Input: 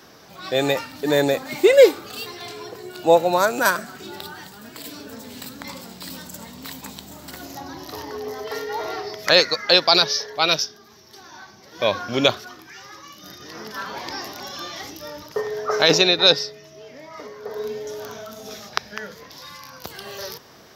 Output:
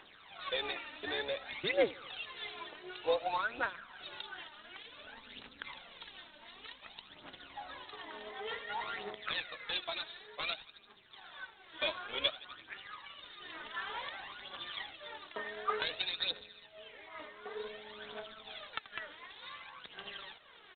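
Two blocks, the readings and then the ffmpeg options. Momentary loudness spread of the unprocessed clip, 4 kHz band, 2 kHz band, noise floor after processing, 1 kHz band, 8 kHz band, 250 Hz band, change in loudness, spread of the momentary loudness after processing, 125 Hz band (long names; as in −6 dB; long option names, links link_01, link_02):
22 LU, −17.5 dB, −13.5 dB, −59 dBFS, −15.0 dB, below −40 dB, −23.0 dB, −20.0 dB, 16 LU, −24.5 dB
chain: -filter_complex "[0:a]aderivative,aecho=1:1:83|166|249|332:0.1|0.056|0.0314|0.0176,tremolo=f=210:d=0.621,asplit=2[link_01][link_02];[link_02]acrusher=bits=3:mode=log:mix=0:aa=0.000001,volume=-7dB[link_03];[link_01][link_03]amix=inputs=2:normalize=0,acompressor=threshold=-40dB:ratio=2.5,highshelf=frequency=2300:gain=-5.5,aphaser=in_gain=1:out_gain=1:delay=3.4:decay=0.65:speed=0.55:type=triangular,volume=6.5dB" -ar 8000 -c:a adpcm_g726 -b:a 24k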